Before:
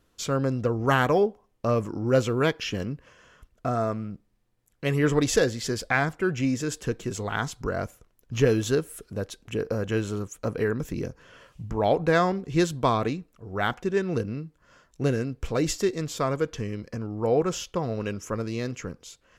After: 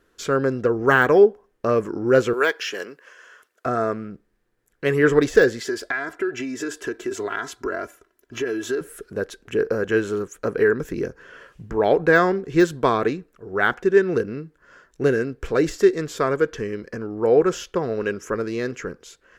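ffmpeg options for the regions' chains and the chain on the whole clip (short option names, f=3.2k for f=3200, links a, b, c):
-filter_complex "[0:a]asettb=1/sr,asplit=3[a][b][c];[a]atrim=end=2.334[d];[b]atrim=start=2.33:end=3.66,asetpts=PTS-STARTPTS,afade=t=in:d=0.004:c=qsin,afade=t=out:st=1.326:d=0.004:c=qsin,highpass=520,highshelf=f=4.2k:g=7.5[e];[c]atrim=start=3.656[f];[d][e]acrossfade=d=0.004:c1=hsin:c2=qsin[g];[g][f]acrossfade=d=0.004:c1=qsin:c2=hsin,asettb=1/sr,asplit=3[h][i][j];[h]atrim=end=5.614[k];[i]atrim=start=5.61:end=8.81,asetpts=PTS-STARTPTS,afade=t=in:d=0.004:c=qsin,afade=t=out:st=3.196:d=0.004:c=qsin,highpass=f=220:p=1,aecho=1:1:3:0.68,atrim=end_sample=141120,acompressor=threshold=-28dB:ratio=12:attack=3.2:release=140:knee=1:detection=peak[l];[j]atrim=start=8.806[m];[k][l]acrossfade=d=0.004:c1=hsin:c2=qsin[n];[n][m]acrossfade=d=0.004:c1=qsin:c2=hsin,deesser=0.65,equalizer=f=100:t=o:w=0.67:g=-6,equalizer=f=400:t=o:w=0.67:g=10,equalizer=f=1.6k:t=o:w=0.67:g=11"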